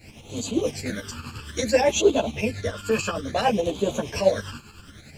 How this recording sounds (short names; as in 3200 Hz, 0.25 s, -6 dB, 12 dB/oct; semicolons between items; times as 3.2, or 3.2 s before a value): phasing stages 12, 0.59 Hz, lowest notch 630–1800 Hz; a quantiser's noise floor 12-bit, dither triangular; tremolo saw up 10 Hz, depth 70%; a shimmering, thickened sound